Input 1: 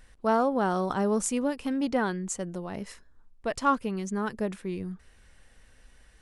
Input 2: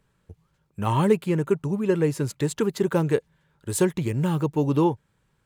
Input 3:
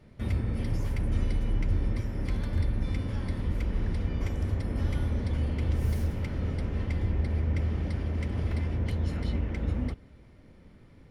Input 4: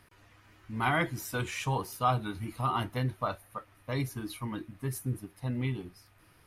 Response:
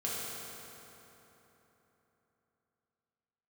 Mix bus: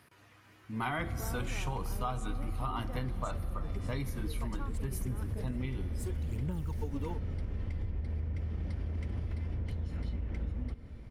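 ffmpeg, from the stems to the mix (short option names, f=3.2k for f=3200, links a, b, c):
-filter_complex "[0:a]acompressor=threshold=-40dB:ratio=2,adelay=950,volume=-8.5dB[a];[1:a]aphaser=in_gain=1:out_gain=1:delay=4.5:decay=0.67:speed=0.71:type=sinusoidal,highshelf=f=5.4k:g=10,adelay=2250,volume=-18dB[b];[2:a]acompressor=threshold=-36dB:ratio=6,adelay=800,volume=0dB,asplit=2[c][d];[d]volume=-20.5dB[e];[3:a]highpass=130,volume=-1dB,asplit=3[f][g][h];[g]volume=-17.5dB[i];[h]apad=whole_len=339868[j];[b][j]sidechaincompress=threshold=-48dB:ratio=8:attack=16:release=593[k];[4:a]atrim=start_sample=2205[l];[e][i]amix=inputs=2:normalize=0[m];[m][l]afir=irnorm=-1:irlink=0[n];[a][k][c][f][n]amix=inputs=5:normalize=0,lowshelf=f=78:g=10,acompressor=threshold=-31dB:ratio=6"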